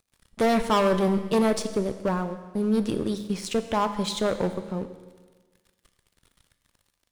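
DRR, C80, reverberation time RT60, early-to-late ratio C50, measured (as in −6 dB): 9.0 dB, 12.0 dB, 1.4 s, 11.0 dB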